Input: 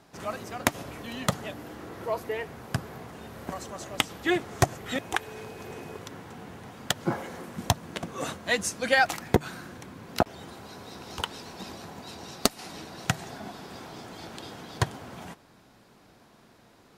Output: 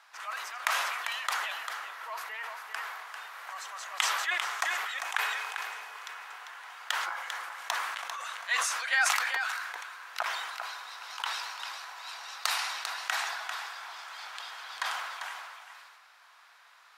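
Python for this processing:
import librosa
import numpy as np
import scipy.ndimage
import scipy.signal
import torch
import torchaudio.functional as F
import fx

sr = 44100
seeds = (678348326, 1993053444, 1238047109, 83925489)

p1 = scipy.signal.sosfilt(scipy.signal.butter(4, 1100.0, 'highpass', fs=sr, output='sos'), x)
p2 = fx.high_shelf(p1, sr, hz=3600.0, db=-11.5)
p3 = fx.over_compress(p2, sr, threshold_db=-49.0, ratio=-1.0)
p4 = p2 + (p3 * 10.0 ** (-3.0 / 20.0))
p5 = p4 + 10.0 ** (-7.0 / 20.0) * np.pad(p4, (int(396 * sr / 1000.0), 0))[:len(p4)]
y = fx.sustainer(p5, sr, db_per_s=32.0)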